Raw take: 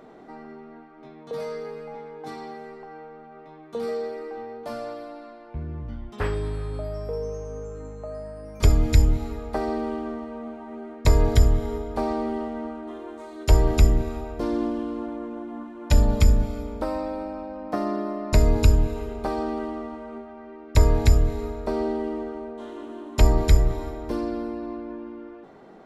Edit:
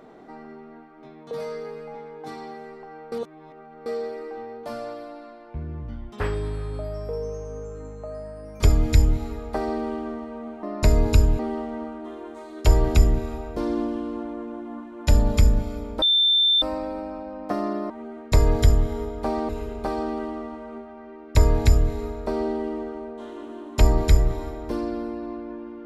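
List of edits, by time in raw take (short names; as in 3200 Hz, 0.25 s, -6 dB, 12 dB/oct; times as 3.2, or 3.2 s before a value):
3.12–3.86 reverse
10.63–12.22 swap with 18.13–18.89
16.85 add tone 3560 Hz -15.5 dBFS 0.60 s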